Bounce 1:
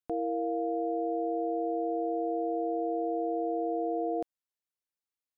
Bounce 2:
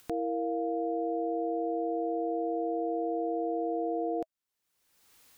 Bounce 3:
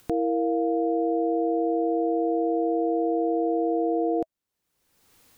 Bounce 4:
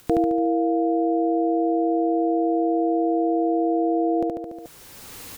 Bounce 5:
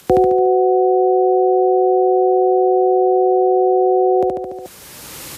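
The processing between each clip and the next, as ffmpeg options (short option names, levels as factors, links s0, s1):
-af "acompressor=mode=upward:threshold=0.0178:ratio=2.5,bandreject=f=640:w=12"
-af "tiltshelf=f=660:g=4.5,volume=1.88"
-af "aecho=1:1:72|144|216|288|360|432:0.708|0.34|0.163|0.0783|0.0376|0.018,areverse,acompressor=mode=upward:threshold=0.0251:ratio=2.5,areverse,volume=1.88"
-af "afreqshift=42,volume=2.51" -ar 32000 -c:a libmp3lame -b:a 56k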